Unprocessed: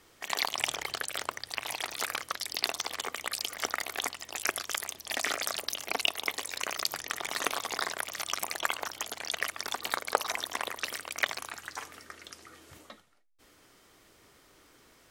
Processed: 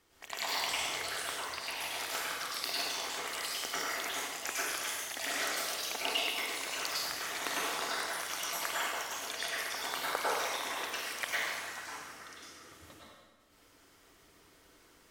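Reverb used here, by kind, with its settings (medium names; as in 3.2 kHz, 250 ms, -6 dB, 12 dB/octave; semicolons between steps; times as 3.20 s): plate-style reverb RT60 1.3 s, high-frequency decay 0.9×, pre-delay 90 ms, DRR -8 dB; trim -10 dB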